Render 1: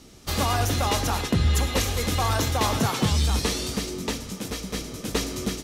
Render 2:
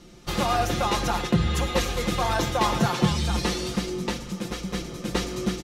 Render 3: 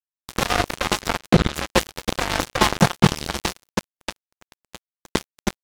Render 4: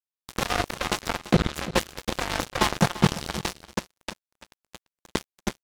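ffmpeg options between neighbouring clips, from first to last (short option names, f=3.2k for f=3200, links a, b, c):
-af "lowpass=f=3.5k:p=1,aecho=1:1:5.7:0.71"
-af "acrusher=bits=2:mix=0:aa=0.5,volume=6.5dB"
-af "aecho=1:1:341:0.168,volume=-5dB"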